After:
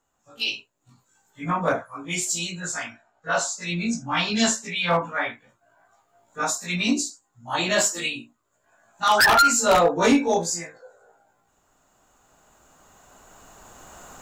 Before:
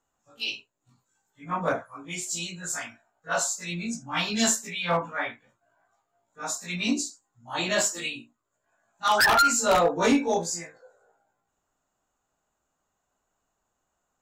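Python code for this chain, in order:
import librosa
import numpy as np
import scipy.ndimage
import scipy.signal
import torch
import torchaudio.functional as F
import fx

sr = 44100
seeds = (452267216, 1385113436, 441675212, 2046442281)

y = fx.recorder_agc(x, sr, target_db=-19.5, rise_db_per_s=8.6, max_gain_db=30)
y = fx.lowpass(y, sr, hz=6400.0, slope=12, at=(2.6, 4.76))
y = y * 10.0 ** (3.5 / 20.0)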